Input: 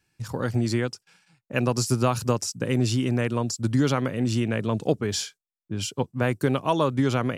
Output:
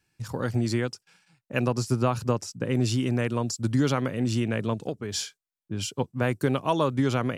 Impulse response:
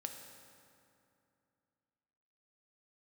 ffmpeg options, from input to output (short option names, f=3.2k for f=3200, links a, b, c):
-filter_complex "[0:a]asettb=1/sr,asplit=3[a][b][c];[a]atrim=end=1.684[d];[b]atrim=start=1.68:end=2.75,asetpts=PTS-STARTPTS,afade=t=in:d=0.004:c=qsin,afade=t=out:st=1.066:d=0.004:c=qsin,highshelf=f=3.9k:g=-9[e];[c]atrim=start=2.746[f];[d][e]acrossfade=d=0.004:c1=hsin:c2=qsin[g];[g][f]acrossfade=d=0.004:c1=qsin:c2=hsin,asplit=3[h][i][j];[h]afade=t=out:st=4.73:d=0.02[k];[i]acompressor=threshold=-27dB:ratio=4,afade=t=in:st=4.73:d=0.02,afade=t=out:st=5.14:d=0.02[l];[j]afade=t=in:st=5.14:d=0.02[m];[k][l][m]amix=inputs=3:normalize=0,volume=-1.5dB"